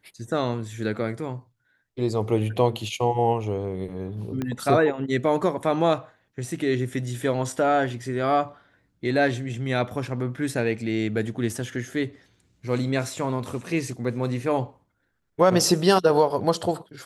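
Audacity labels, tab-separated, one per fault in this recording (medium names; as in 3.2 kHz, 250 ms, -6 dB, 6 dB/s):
4.420000	4.420000	pop -16 dBFS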